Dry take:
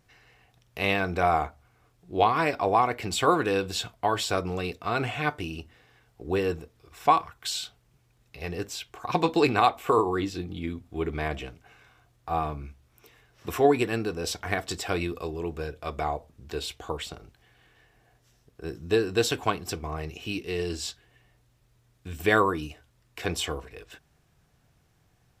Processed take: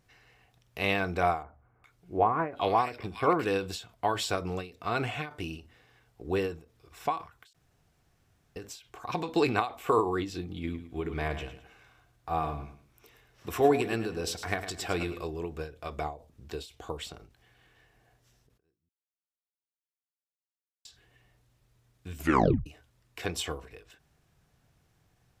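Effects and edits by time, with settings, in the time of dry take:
1.43–3.45 bands offset in time lows, highs 0.41 s, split 1800 Hz
7.53–8.56 room tone
10.52–15.24 feedback echo 0.106 s, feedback 30%, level -11 dB
16.01–17.03 dynamic EQ 1600 Hz, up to -5 dB, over -45 dBFS, Q 0.78
18.89–20.85 mute
22.18 tape stop 0.48 s
whole clip: ending taper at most 150 dB/s; gain -2.5 dB

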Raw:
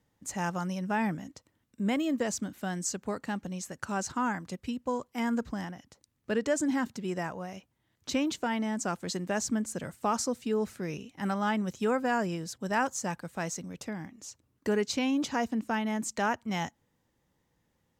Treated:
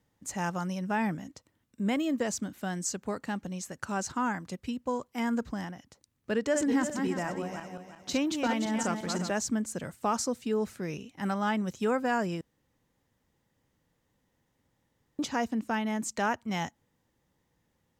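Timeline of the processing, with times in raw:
6.37–9.31 regenerating reverse delay 0.176 s, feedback 53%, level -5 dB
12.41–15.19 room tone

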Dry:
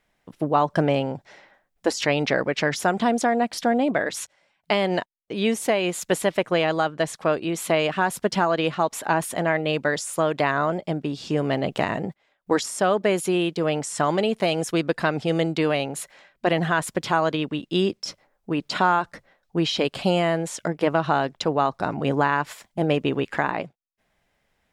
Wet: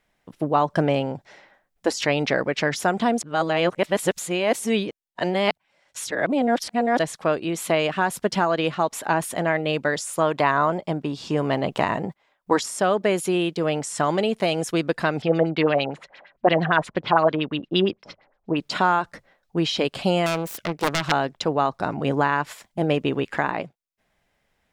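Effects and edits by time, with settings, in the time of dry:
3.22–6.99 reverse
10.21–12.61 bell 1000 Hz +6.5 dB 0.54 oct
15.22–18.58 LFO low-pass sine 8.7 Hz 620–4600 Hz
20.26–21.12 self-modulated delay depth 0.76 ms

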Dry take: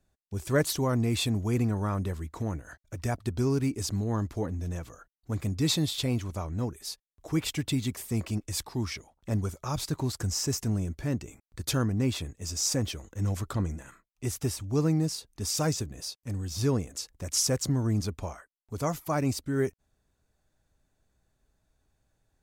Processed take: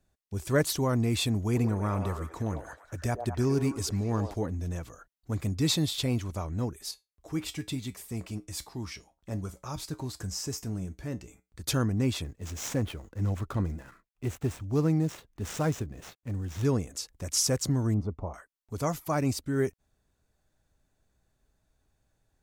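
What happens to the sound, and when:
1.35–4.34 delay with a stepping band-pass 0.103 s, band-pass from 590 Hz, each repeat 0.7 oct, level -2.5 dB
6.91–11.62 resonator 62 Hz, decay 0.21 s, harmonics odd
12.24–16.65 median filter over 9 samples
17.94–18.34 polynomial smoothing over 65 samples

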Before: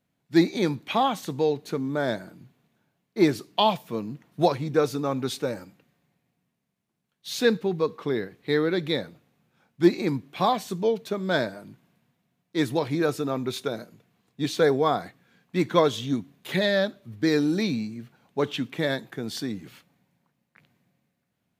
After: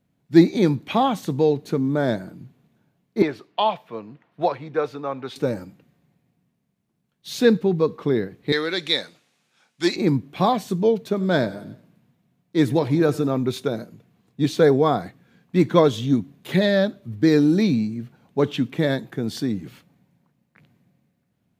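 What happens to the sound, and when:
3.22–5.36 three-band isolator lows -16 dB, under 510 Hz, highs -19 dB, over 3600 Hz
8.52–9.96 weighting filter ITU-R 468
11.07–13.29 feedback echo 92 ms, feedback 52%, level -19.5 dB
whole clip: low shelf 490 Hz +9 dB

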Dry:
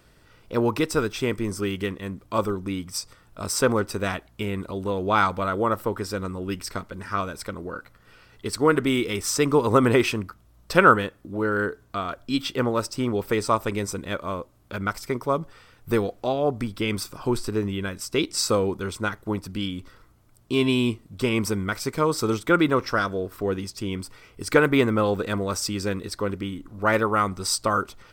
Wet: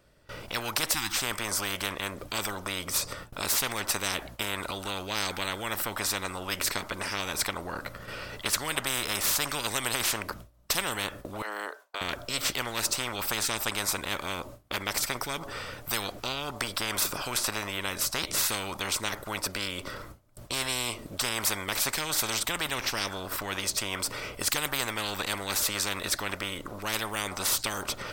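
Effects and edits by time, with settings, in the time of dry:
0.93–1.17 spectral delete 350–740 Hz
11.42–12.01 ladder high-pass 610 Hz, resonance 35%
whole clip: bell 580 Hz +10.5 dB 0.23 oct; gate with hold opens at -44 dBFS; spectral compressor 10:1; gain -8.5 dB

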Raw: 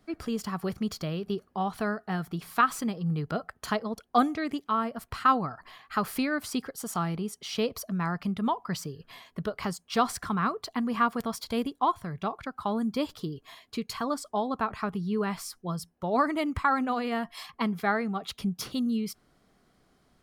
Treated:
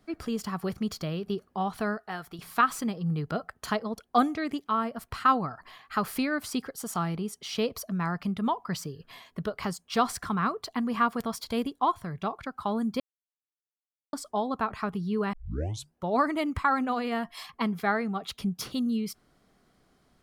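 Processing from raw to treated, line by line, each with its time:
1.97–2.39 bell 180 Hz -12.5 dB 1.7 oct
13–14.13 mute
15.33 tape start 0.61 s

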